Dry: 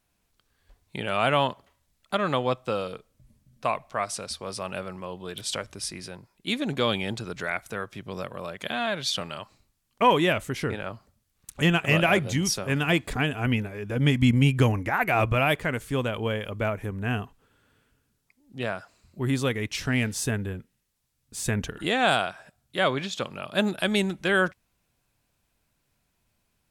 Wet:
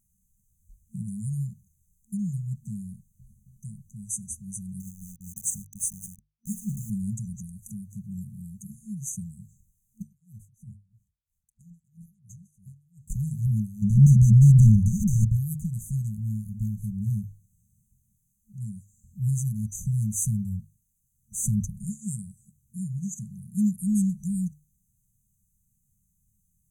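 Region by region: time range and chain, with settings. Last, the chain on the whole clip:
0:04.80–0:06.90: high-shelf EQ 2,100 Hz +3 dB + mains-hum notches 60/120/180 Hz + centre clipping without the shift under −36 dBFS
0:10.02–0:13.10: guitar amp tone stack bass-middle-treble 6-0-2 + compressor whose output falls as the input rises −46 dBFS + tremolo with a sine in dB 3 Hz, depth 23 dB
0:13.82–0:15.25: low-shelf EQ 71 Hz +11 dB + mid-hump overdrive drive 31 dB, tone 1,200 Hz, clips at −5.5 dBFS + highs frequency-modulated by the lows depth 0.23 ms
whole clip: mains-hum notches 50/100/150 Hz; brick-wall band-stop 220–6,000 Hz; level +4.5 dB

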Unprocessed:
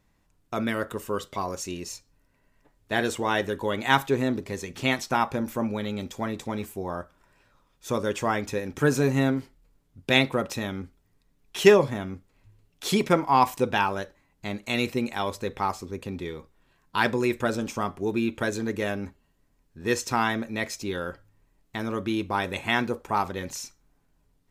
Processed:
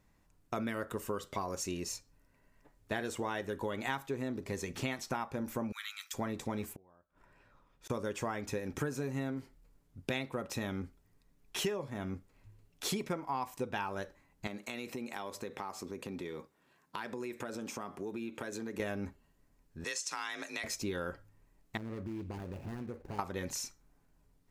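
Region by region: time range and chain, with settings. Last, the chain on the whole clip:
0:05.72–0:06.14: Butterworth high-pass 1,200 Hz 48 dB per octave + high-shelf EQ 5,700 Hz +7 dB
0:06.73–0:07.90: bass and treble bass 0 dB, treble −9 dB + gate with flip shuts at −34 dBFS, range −31 dB
0:14.47–0:18.80: high-pass filter 170 Hz + downward compressor, threshold −35 dBFS
0:19.84–0:20.64: meter weighting curve ITU-R 468 + downward compressor 4 to 1, threshold −33 dBFS + frequency shifter +40 Hz
0:21.77–0:23.19: running median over 41 samples + parametric band 87 Hz +5 dB 1.8 octaves + downward compressor 5 to 1, threshold −37 dBFS
whole clip: parametric band 3,400 Hz −3 dB 0.75 octaves; downward compressor 10 to 1, threshold −31 dBFS; level −1.5 dB

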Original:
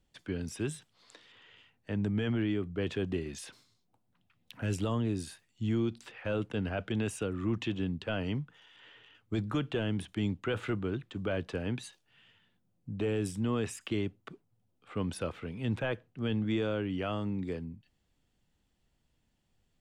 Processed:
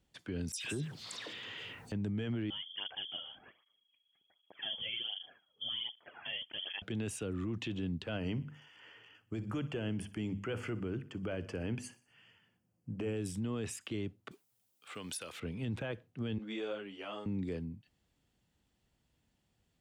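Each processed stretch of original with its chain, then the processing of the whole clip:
0:00.52–0:01.92: all-pass dispersion lows, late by 123 ms, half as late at 2,300 Hz + envelope flattener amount 50%
0:02.50–0:06.82: parametric band 260 Hz −8 dB 2.7 octaves + voice inversion scrambler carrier 3,300 Hz + through-zero flanger with one copy inverted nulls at 1.3 Hz, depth 3.1 ms
0:08.17–0:13.17: Butterworth band-reject 3,800 Hz, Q 3.1 + mains-hum notches 50/100/150/200/250 Hz + repeating echo 61 ms, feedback 48%, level −19.5 dB
0:14.31–0:15.40: spectral tilt +4.5 dB per octave + downward compressor 10 to 1, threshold −37 dBFS
0:16.38–0:17.26: high-pass filter 430 Hz + string-ensemble chorus
whole clip: high-pass filter 46 Hz; dynamic equaliser 1,100 Hz, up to −4 dB, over −50 dBFS, Q 0.77; brickwall limiter −29 dBFS

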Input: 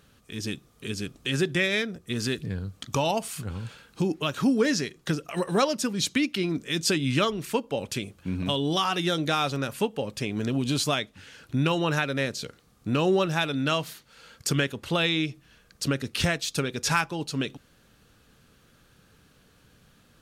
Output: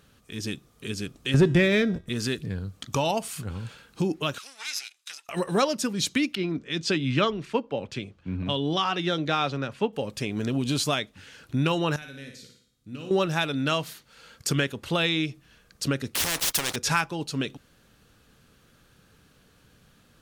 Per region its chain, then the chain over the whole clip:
0:01.34–0:02.09: spectral tilt −2.5 dB per octave + hum removal 319.9 Hz, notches 37 + leveller curve on the samples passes 1
0:04.38–0:05.29: lower of the sound and its delayed copy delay 0.79 ms + flat-topped band-pass 5,800 Hz, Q 0.6
0:06.35–0:09.93: low-pass filter 4,400 Hz + multiband upward and downward expander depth 40%
0:11.96–0:13.11: parametric band 890 Hz −11 dB 1.8 octaves + tuned comb filter 250 Hz, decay 0.63 s, mix 80% + flutter between parallel walls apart 9.9 metres, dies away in 0.57 s
0:16.15–0:16.76: EQ curve with evenly spaced ripples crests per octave 1.2, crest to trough 7 dB + leveller curve on the samples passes 3 + every bin compressed towards the loudest bin 4 to 1
whole clip: no processing

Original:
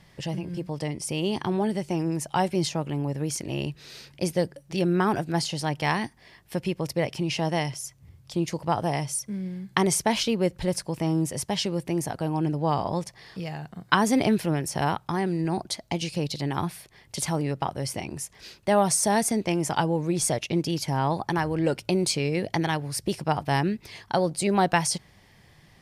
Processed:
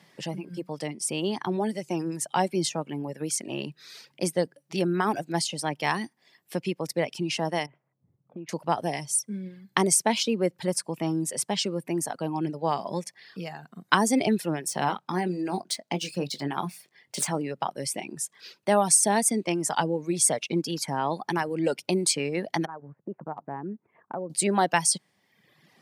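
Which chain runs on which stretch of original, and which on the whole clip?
0:07.66–0:08.49: low-pass filter 2,300 Hz 24 dB per octave + low-pass that shuts in the quiet parts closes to 600 Hz, open at −24 dBFS + downward compressor 4 to 1, threshold −36 dBFS
0:14.68–0:17.35: running median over 3 samples + double-tracking delay 22 ms −9 dB
0:22.65–0:24.30: inverse Chebyshev low-pass filter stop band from 4,500 Hz, stop band 60 dB + downward compressor 2.5 to 1, threshold −32 dBFS + transient designer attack −1 dB, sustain −7 dB
whole clip: reverb reduction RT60 1 s; high-pass filter 170 Hz 24 dB per octave; dynamic equaliser 8,400 Hz, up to +7 dB, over −49 dBFS, Q 2.7

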